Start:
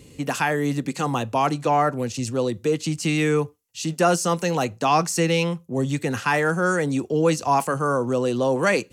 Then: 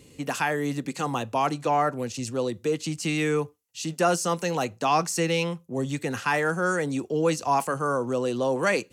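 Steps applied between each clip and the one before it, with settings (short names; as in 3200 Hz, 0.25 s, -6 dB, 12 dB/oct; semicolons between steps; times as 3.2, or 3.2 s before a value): low shelf 180 Hz -5 dB; gain -3 dB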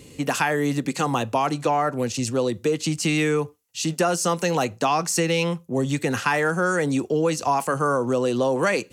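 compressor, threshold -24 dBFS, peak gain reduction 7.5 dB; gain +6.5 dB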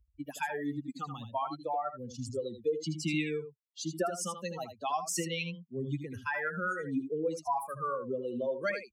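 per-bin expansion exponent 3; echo 79 ms -9 dB; gain -5.5 dB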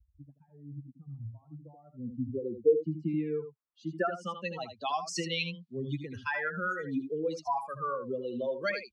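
low-pass sweep 110 Hz -> 4300 Hz, 1.34–4.83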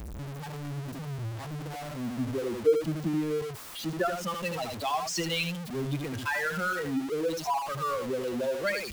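zero-crossing step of -33 dBFS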